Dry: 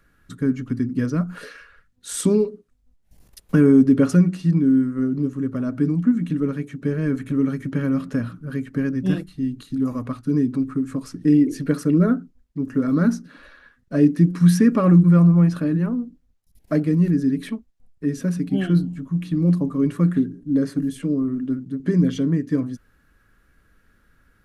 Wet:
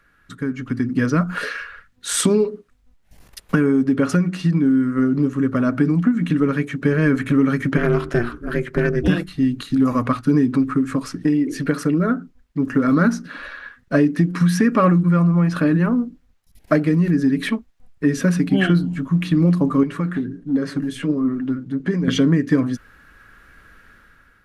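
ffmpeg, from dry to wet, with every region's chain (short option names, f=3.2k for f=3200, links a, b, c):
-filter_complex "[0:a]asettb=1/sr,asplit=3[a][b][c];[a]atrim=end=7.774[d];[b]atrim=start=7.77:end=9.08,asetpts=PTS-STARTPTS,afade=t=in:d=0.004:c=qsin,afade=t=out:st=1.306:d=0.004:c=qsin,asoftclip=type=hard:threshold=-14.5dB,aeval=exprs='val(0)*sin(2*PI*120*n/s)':c=same[e];[c]atrim=start=9.076[f];[d][e]acrossfade=d=0.004:c1=hsin:c2=qsin[g];[g][f]acrossfade=d=0.004:c1=qsin:c2=hsin,asettb=1/sr,asplit=3[h][i][j];[h]atrim=end=19.834[k];[i]atrim=start=19.83:end=22.08,asetpts=PTS-STARTPTS,afade=t=in:d=0.004:c=qsin,afade=t=out:st=2.246:d=0.004:c=qsin,highshelf=f=10k:g=-9,acompressor=threshold=-24dB:ratio=2:attack=3.2:release=140:knee=1:detection=peak,flanger=delay=3.7:depth=6.2:regen=56:speed=1.4:shape=triangular[l];[j]atrim=start=22.076[m];[k][l]acrossfade=d=0.004:c1=hsin:c2=qsin[n];[n][m]acrossfade=d=0.004:c1=qsin:c2=hsin,acompressor=threshold=-19dB:ratio=6,equalizer=f=1.7k:w=0.4:g=9,dynaudnorm=f=230:g=7:m=11.5dB,volume=-3dB"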